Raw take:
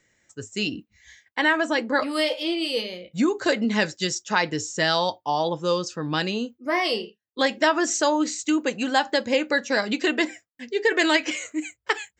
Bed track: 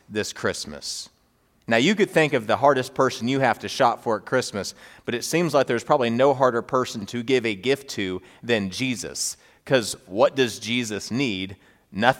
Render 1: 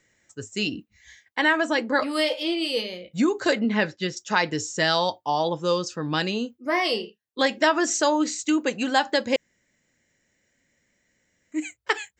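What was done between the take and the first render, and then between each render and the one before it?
3.59–4.17 s: low-pass 3 kHz; 9.36–11.52 s: room tone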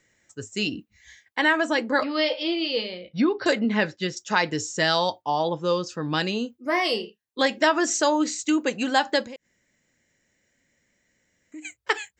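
2.03–3.46 s: brick-wall FIR low-pass 5.7 kHz; 5.22–5.89 s: distance through air 87 m; 9.23–11.65 s: compression 5:1, threshold -38 dBFS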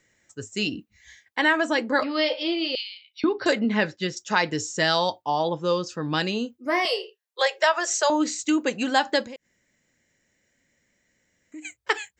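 2.75–3.24 s: steep high-pass 2.4 kHz; 6.85–8.10 s: steep high-pass 390 Hz 72 dB/octave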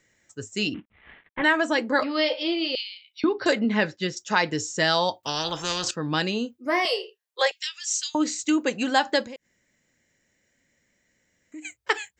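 0.74–1.44 s: CVSD coder 16 kbps; 5.23–5.91 s: spectrum-flattening compressor 4:1; 7.51–8.15 s: inverse Chebyshev high-pass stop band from 620 Hz, stop band 70 dB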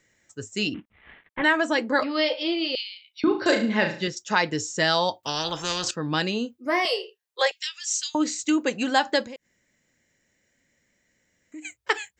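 3.22–4.08 s: flutter echo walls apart 6.2 m, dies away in 0.41 s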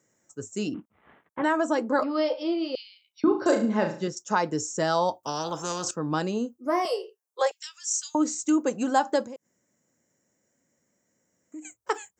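high-pass 130 Hz; high-order bell 2.8 kHz -13 dB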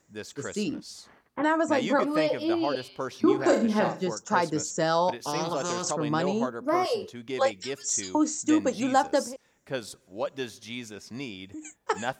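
add bed track -13 dB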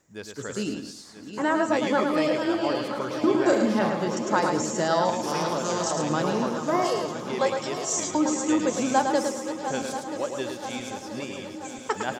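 backward echo that repeats 491 ms, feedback 76%, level -10 dB; feedback delay 108 ms, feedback 28%, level -6 dB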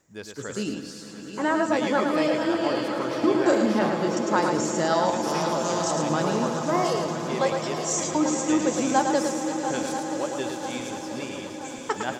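echo with a slow build-up 114 ms, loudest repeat 5, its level -17 dB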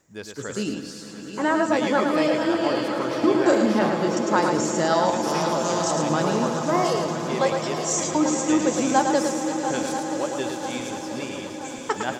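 trim +2 dB

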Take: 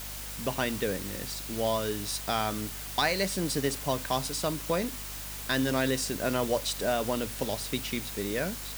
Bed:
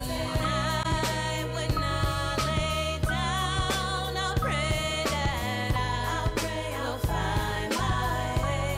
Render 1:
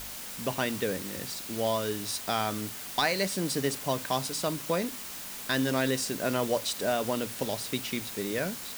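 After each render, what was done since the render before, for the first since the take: de-hum 50 Hz, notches 3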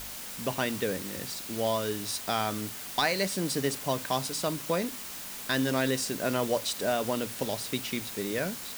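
no audible change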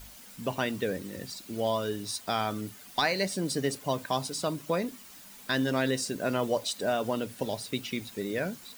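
noise reduction 11 dB, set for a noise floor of -40 dBFS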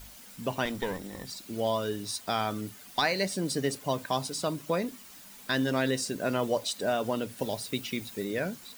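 0.65–1.27 s: comb filter that takes the minimum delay 0.55 ms; 7.37–8.25 s: treble shelf 9.5 kHz +4.5 dB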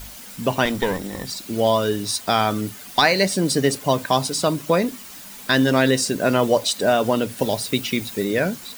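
trim +10.5 dB

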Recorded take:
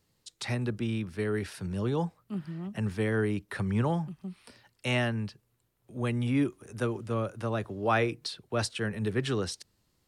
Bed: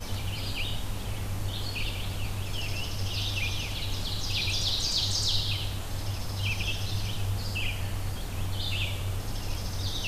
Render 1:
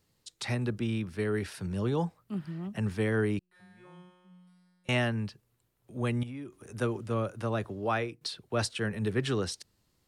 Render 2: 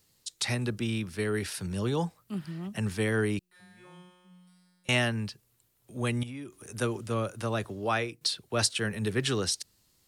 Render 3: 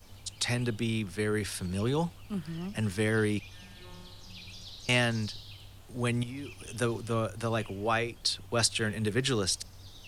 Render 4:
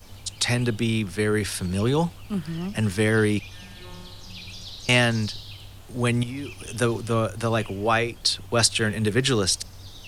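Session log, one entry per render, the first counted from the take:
3.39–4.89 s: feedback comb 180 Hz, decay 1.7 s, mix 100%; 6.23–6.64 s: compression 4:1, threshold -40 dBFS; 7.69–8.21 s: fade out, to -12.5 dB
treble shelf 3 kHz +11 dB
add bed -18 dB
trim +7 dB

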